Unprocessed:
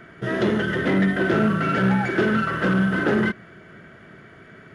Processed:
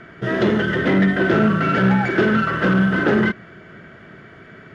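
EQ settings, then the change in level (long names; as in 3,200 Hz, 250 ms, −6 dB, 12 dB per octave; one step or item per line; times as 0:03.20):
low-pass filter 6,400 Hz 12 dB per octave
+3.5 dB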